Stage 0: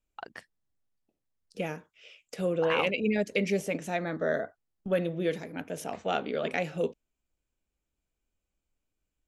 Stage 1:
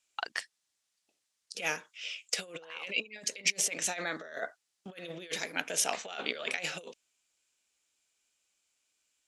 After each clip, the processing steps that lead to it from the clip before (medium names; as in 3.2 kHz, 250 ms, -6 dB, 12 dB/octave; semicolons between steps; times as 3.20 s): compressor with a negative ratio -34 dBFS, ratio -0.5; frequency weighting ITU-R 468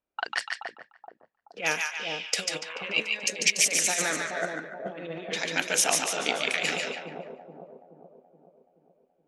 two-band feedback delay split 860 Hz, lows 426 ms, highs 145 ms, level -3 dB; level-controlled noise filter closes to 750 Hz, open at -29 dBFS; trim +5.5 dB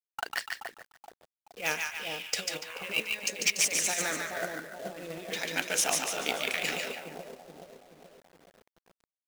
companded quantiser 4-bit; trim -4 dB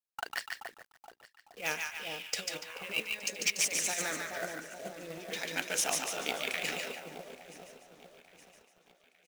feedback delay 869 ms, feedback 52%, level -21.5 dB; trim -3.5 dB